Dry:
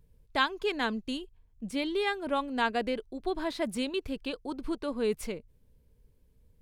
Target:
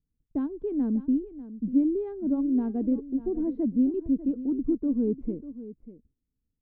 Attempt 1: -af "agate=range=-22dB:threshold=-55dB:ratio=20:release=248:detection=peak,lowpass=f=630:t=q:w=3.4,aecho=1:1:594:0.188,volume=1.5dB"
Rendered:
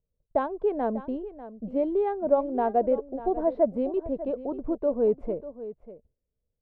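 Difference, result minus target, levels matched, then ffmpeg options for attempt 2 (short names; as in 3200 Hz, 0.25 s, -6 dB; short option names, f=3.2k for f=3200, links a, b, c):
500 Hz band +9.0 dB
-af "agate=range=-22dB:threshold=-55dB:ratio=20:release=248:detection=peak,lowpass=f=280:t=q:w=3.4,aecho=1:1:594:0.188,volume=1.5dB"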